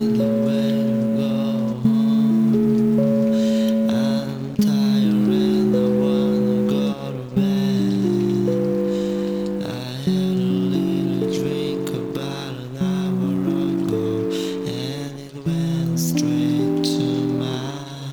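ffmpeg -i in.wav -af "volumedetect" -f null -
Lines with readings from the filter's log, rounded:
mean_volume: -19.8 dB
max_volume: -6.0 dB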